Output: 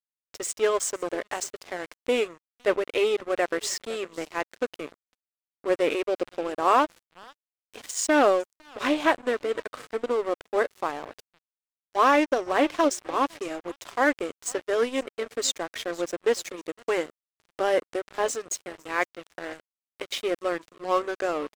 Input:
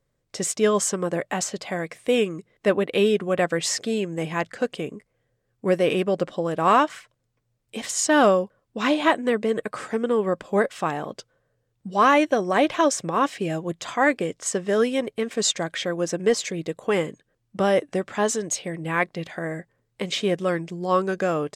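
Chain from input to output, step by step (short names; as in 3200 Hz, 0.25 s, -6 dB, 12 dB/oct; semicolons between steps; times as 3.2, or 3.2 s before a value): brick-wall FIR high-pass 240 Hz; feedback echo 0.506 s, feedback 26%, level -19 dB; crossover distortion -33.5 dBFS; Doppler distortion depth 0.12 ms; gain -1.5 dB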